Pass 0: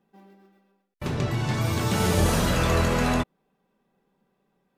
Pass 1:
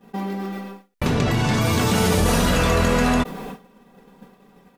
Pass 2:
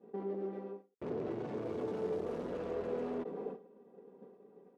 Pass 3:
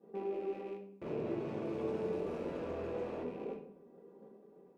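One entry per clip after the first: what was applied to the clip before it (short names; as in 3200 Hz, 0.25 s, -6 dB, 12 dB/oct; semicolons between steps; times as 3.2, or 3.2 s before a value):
expander -57 dBFS; comb 4.2 ms, depth 36%; fast leveller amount 70%; gain +1.5 dB
tube stage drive 29 dB, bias 0.45; band-pass 410 Hz, Q 3.1; gain +2 dB
rattling part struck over -51 dBFS, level -48 dBFS; reverb RT60 0.60 s, pre-delay 6 ms, DRR 1 dB; gain -3 dB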